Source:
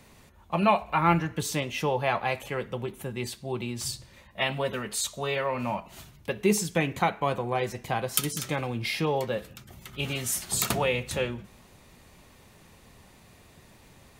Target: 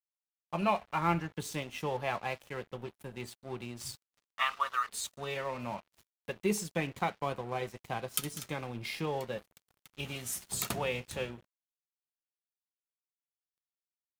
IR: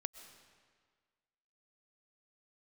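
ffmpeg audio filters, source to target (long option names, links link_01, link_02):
-filter_complex "[0:a]asettb=1/sr,asplit=3[link_01][link_02][link_03];[link_01]atrim=end=3.954[link_04];[link_02]atrim=start=3.95:end=4.89,asetpts=PTS-STARTPTS,afade=type=in:duration=0.004:curve=qsin,afade=type=out:start_time=0.936:duration=0.004:curve=qsin,highpass=frequency=1200:width_type=q:width=15[link_05];[link_03]atrim=start=4.886[link_06];[link_04][link_05]acrossfade=duration=0.004:curve1=hsin:curve2=qsin[link_07];[link_07][link_06]acrossfade=duration=0.004:curve1=qsin:curve2=hsin,aeval=exprs='sgn(val(0))*max(abs(val(0))-0.00891,0)':channel_layout=same,volume=-6.5dB"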